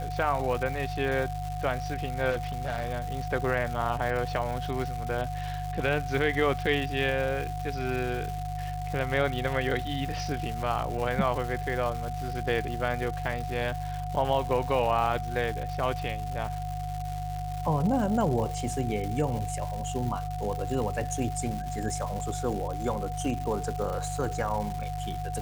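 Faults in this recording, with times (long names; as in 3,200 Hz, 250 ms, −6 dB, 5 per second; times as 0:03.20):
surface crackle 370 per second −34 dBFS
mains hum 50 Hz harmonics 3 −35 dBFS
whistle 730 Hz −35 dBFS
0:02.30–0:02.91: clipping −26 dBFS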